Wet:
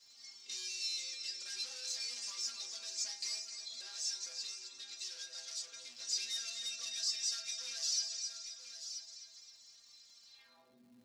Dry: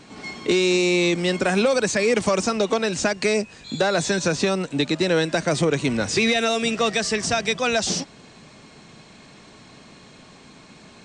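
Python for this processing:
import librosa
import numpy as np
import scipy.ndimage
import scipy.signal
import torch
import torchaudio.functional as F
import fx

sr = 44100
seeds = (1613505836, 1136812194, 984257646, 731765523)

y = fx.low_shelf(x, sr, hz=210.0, db=-5.0)
y = fx.notch(y, sr, hz=360.0, q=12.0)
y = fx.stiff_resonator(y, sr, f0_hz=120.0, decay_s=0.46, stiffness=0.008)
y = fx.echo_split(y, sr, split_hz=660.0, low_ms=166, high_ms=259, feedback_pct=52, wet_db=-11.0)
y = np.clip(y, -10.0 ** (-35.5 / 20.0), 10.0 ** (-35.5 / 20.0))
y = fx.peak_eq(y, sr, hz=4900.0, db=11.0, octaves=0.7)
y = y + 10.0 ** (-10.0 / 20.0) * np.pad(y, (int(981 * sr / 1000.0), 0))[:len(y)]
y = fx.filter_sweep_bandpass(y, sr, from_hz=6100.0, to_hz=230.0, start_s=10.25, end_s=10.82, q=1.6)
y = fx.dmg_crackle(y, sr, seeds[0], per_s=410.0, level_db=-63.0)
y = fx.harmonic_tremolo(y, sr, hz=2.0, depth_pct=50, crossover_hz=1800.0, at=(3.81, 6.0))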